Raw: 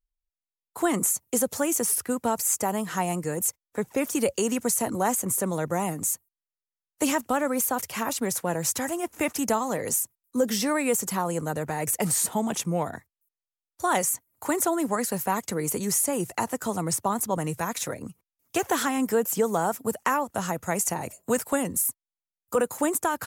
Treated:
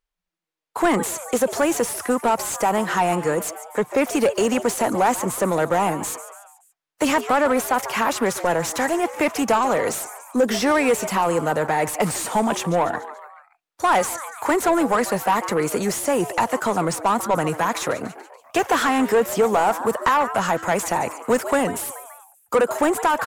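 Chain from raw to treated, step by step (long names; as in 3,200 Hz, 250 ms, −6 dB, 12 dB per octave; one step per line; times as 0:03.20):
echo with shifted repeats 143 ms, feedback 52%, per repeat +150 Hz, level −17.5 dB
mid-hump overdrive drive 19 dB, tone 1,700 Hz, clips at −10.5 dBFS
level +2.5 dB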